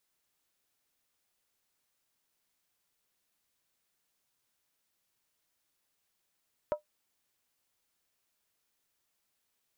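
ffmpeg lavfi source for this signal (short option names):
-f lavfi -i "aevalsrc='0.075*pow(10,-3*t/0.12)*sin(2*PI*601*t)+0.0266*pow(10,-3*t/0.095)*sin(2*PI*958*t)+0.00944*pow(10,-3*t/0.082)*sin(2*PI*1283.7*t)+0.00335*pow(10,-3*t/0.079)*sin(2*PI*1379.9*t)+0.00119*pow(10,-3*t/0.074)*sin(2*PI*1594.5*t)':d=0.63:s=44100"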